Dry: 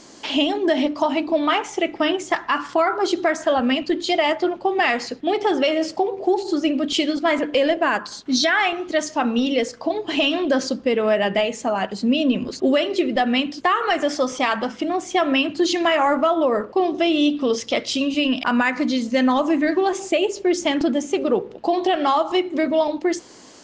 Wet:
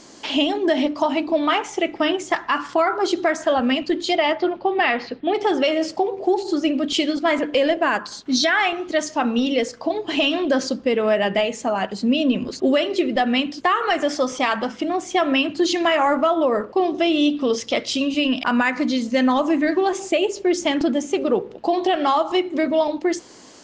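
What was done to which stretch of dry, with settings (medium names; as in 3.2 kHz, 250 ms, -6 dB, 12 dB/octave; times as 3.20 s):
4.15–5.33 s: low-pass 5.7 kHz -> 3.6 kHz 24 dB/octave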